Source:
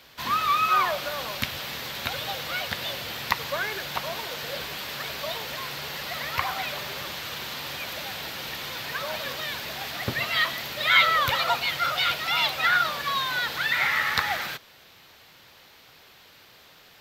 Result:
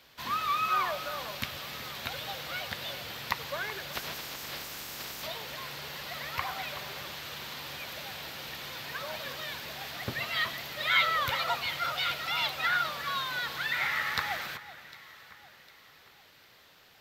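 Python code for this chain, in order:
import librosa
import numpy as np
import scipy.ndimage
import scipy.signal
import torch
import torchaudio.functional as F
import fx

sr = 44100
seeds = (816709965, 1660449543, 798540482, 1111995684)

y = fx.spec_clip(x, sr, under_db=17, at=(3.92, 5.26), fade=0.02)
y = fx.echo_alternate(y, sr, ms=377, hz=2400.0, feedback_pct=64, wet_db=-14.0)
y = y * librosa.db_to_amplitude(-6.5)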